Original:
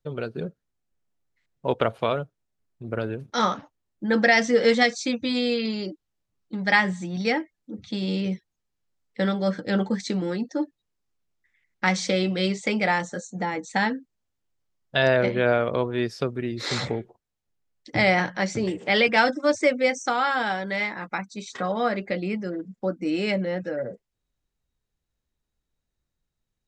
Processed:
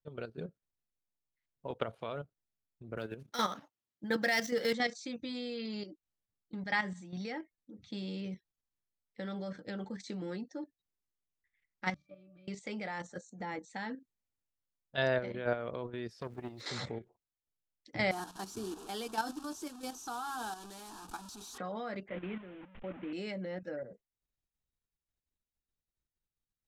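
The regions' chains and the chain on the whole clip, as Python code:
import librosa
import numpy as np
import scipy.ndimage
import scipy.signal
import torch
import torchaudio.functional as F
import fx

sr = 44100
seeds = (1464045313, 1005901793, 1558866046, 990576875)

y = fx.chain(x, sr, fx.median_filter(points=5),
    fx.highpass(hz=110.0, slope=12),
    fx.high_shelf(hz=2700.0, db=9.0), at=(2.97, 4.73))
y = fx.chain(y, sr, fx.law_mismatch(coded='A'),
    fx.peak_eq(hz=350.0, db=-5.5, octaves=1.3),
    fx.octave_resonator(note='D', decay_s=0.26), at=(11.94, 12.48))
y = fx.chain(y, sr, fx.sample_gate(floor_db=-47.0),
    fx.transformer_sat(knee_hz=890.0), at=(16.21, 16.61))
y = fx.chain(y, sr, fx.delta_mod(bps=64000, step_db=-26.5),
    fx.fixed_phaser(hz=550.0, stages=6), at=(18.11, 21.58))
y = fx.chain(y, sr, fx.delta_mod(bps=16000, step_db=-29.5),
    fx.band_widen(depth_pct=70), at=(22.08, 23.13))
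y = fx.level_steps(y, sr, step_db=10)
y = fx.dynamic_eq(y, sr, hz=2500.0, q=5.7, threshold_db=-45.0, ratio=4.0, max_db=-4)
y = y * 10.0 ** (-9.0 / 20.0)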